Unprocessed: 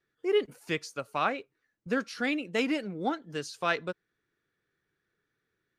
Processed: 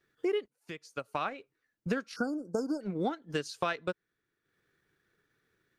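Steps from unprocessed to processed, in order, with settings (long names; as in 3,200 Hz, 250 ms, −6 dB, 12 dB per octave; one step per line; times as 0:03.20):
transient designer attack +2 dB, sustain −8 dB
downward compressor 12 to 1, threshold −33 dBFS, peak gain reduction 14 dB
0:00.48–0:01.38: fade in
0:02.16–0:02.81: linear-phase brick-wall band-stop 1,600–4,400 Hz
level +5.5 dB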